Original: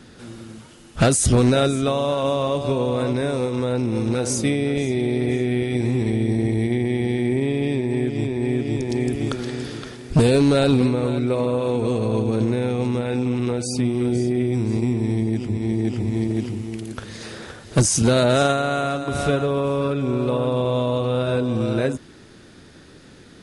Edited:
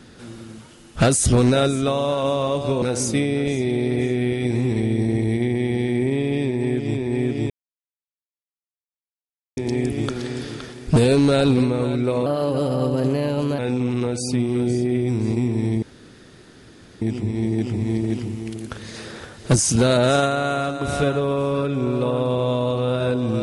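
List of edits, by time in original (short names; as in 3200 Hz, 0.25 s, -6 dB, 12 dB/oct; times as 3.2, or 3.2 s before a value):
2.82–4.12 cut
8.8 insert silence 2.07 s
11.49–13.04 speed 117%
15.28 insert room tone 1.19 s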